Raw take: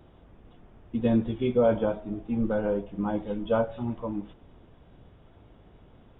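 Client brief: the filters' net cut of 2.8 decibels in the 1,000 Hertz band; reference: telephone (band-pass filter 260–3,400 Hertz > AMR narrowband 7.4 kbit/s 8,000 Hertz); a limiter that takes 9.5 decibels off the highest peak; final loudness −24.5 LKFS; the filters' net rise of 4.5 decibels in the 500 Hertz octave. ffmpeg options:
ffmpeg -i in.wav -af "equalizer=frequency=500:width_type=o:gain=7.5,equalizer=frequency=1000:width_type=o:gain=-8.5,alimiter=limit=-17.5dB:level=0:latency=1,highpass=260,lowpass=3400,volume=6dB" -ar 8000 -c:a libopencore_amrnb -b:a 7400 out.amr

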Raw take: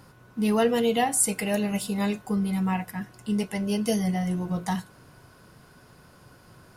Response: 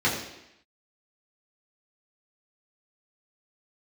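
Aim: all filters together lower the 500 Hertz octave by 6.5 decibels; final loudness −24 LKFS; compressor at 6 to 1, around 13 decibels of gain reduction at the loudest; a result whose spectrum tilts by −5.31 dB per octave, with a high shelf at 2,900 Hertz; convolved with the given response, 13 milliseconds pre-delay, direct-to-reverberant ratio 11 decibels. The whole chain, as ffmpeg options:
-filter_complex "[0:a]equalizer=frequency=500:width_type=o:gain=-7.5,highshelf=frequency=2900:gain=-6,acompressor=threshold=-38dB:ratio=6,asplit=2[link_01][link_02];[1:a]atrim=start_sample=2205,adelay=13[link_03];[link_02][link_03]afir=irnorm=-1:irlink=0,volume=-25.5dB[link_04];[link_01][link_04]amix=inputs=2:normalize=0,volume=16dB"

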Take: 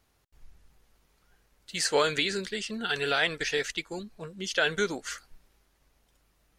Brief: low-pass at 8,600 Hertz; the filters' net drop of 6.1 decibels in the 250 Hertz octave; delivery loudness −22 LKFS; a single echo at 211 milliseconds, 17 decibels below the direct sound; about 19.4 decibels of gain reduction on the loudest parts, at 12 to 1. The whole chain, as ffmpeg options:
ffmpeg -i in.wav -af "lowpass=8600,equalizer=frequency=250:width_type=o:gain=-9,acompressor=threshold=-41dB:ratio=12,aecho=1:1:211:0.141,volume=22.5dB" out.wav

